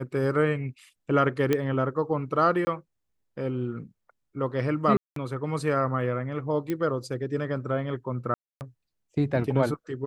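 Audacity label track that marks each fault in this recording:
1.530000	1.530000	click −11 dBFS
2.650000	2.670000	drop-out 20 ms
4.970000	5.160000	drop-out 193 ms
6.700000	6.700000	click −17 dBFS
8.340000	8.610000	drop-out 269 ms

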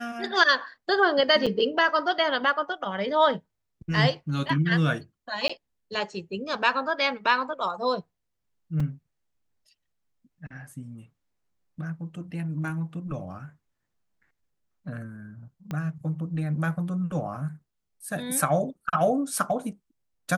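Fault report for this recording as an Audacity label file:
1.460000	1.470000	drop-out 6.2 ms
5.480000	5.500000	drop-out 15 ms
8.800000	8.800000	drop-out 3.7 ms
15.710000	15.710000	click −20 dBFS

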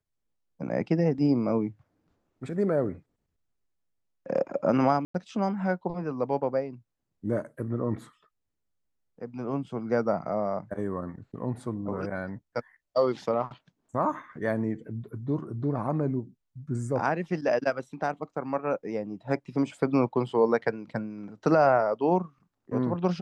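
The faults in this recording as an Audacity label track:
5.050000	5.140000	drop-out 94 ms

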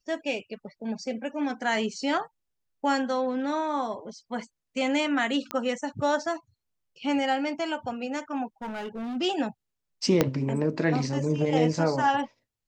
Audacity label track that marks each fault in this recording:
5.510000	5.510000	click −15 dBFS
8.620000	9.170000	clipping −31 dBFS
10.210000	10.210000	click −6 dBFS

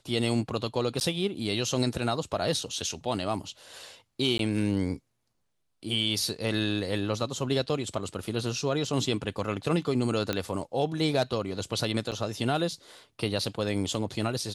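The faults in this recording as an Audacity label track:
1.000000	1.010000	drop-out 9.6 ms
4.380000	4.390000	drop-out 12 ms
10.330000	10.330000	click −13 dBFS
12.110000	12.120000	drop-out 8.3 ms

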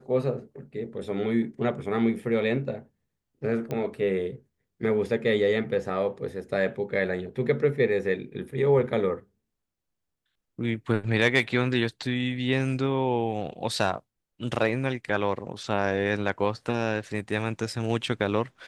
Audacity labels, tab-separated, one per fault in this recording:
3.710000	3.710000	click −19 dBFS

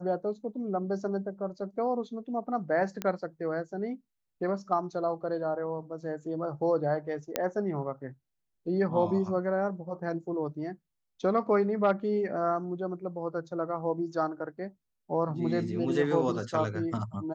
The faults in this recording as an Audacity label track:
3.020000	3.020000	click −17 dBFS
7.360000	7.360000	click −11 dBFS

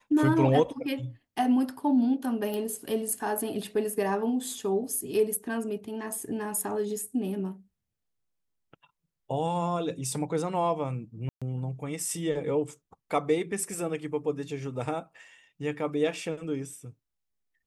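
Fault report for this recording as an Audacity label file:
2.540000	2.540000	click
11.290000	11.420000	drop-out 126 ms

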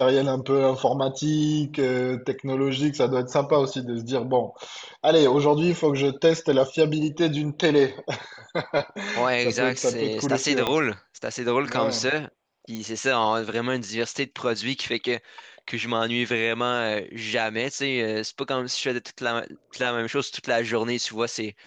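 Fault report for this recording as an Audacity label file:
10.670000	10.670000	click −10 dBFS
12.750000	12.750000	click −19 dBFS

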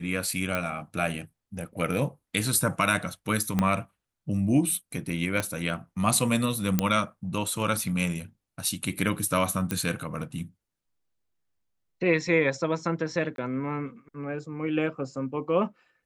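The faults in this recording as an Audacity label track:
0.550000	0.550000	click −14 dBFS
3.590000	3.590000	click −11 dBFS
5.400000	5.400000	click −12 dBFS
6.790000	6.790000	click −8 dBFS
9.710000	9.710000	click −12 dBFS
13.360000	13.380000	drop-out 22 ms

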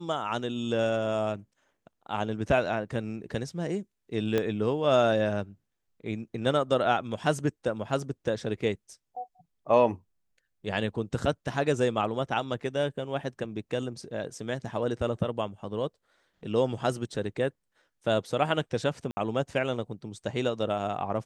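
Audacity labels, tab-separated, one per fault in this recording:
4.380000	4.380000	click −14 dBFS
19.110000	19.170000	drop-out 60 ms

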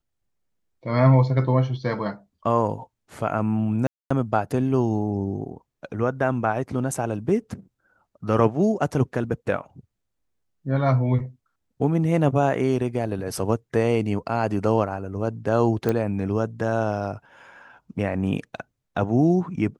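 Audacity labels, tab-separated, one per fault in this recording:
3.870000	4.110000	drop-out 235 ms
15.890000	15.890000	click −11 dBFS

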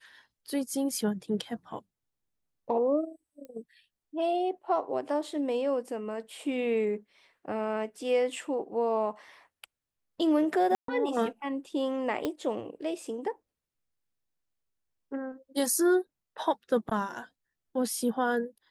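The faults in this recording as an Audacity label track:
3.450000	3.450000	click −33 dBFS
10.750000	10.880000	drop-out 133 ms
12.250000	12.250000	click −17 dBFS

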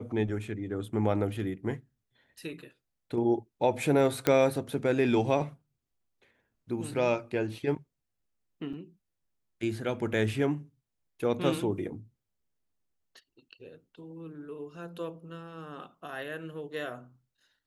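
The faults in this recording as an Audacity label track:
4.270000	4.270000	click −10 dBFS
8.730000	8.740000	drop-out 5.5 ms

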